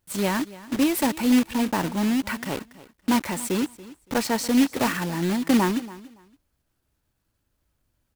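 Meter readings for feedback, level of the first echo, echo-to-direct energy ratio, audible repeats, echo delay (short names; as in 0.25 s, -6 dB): 20%, -18.5 dB, -18.5 dB, 2, 0.283 s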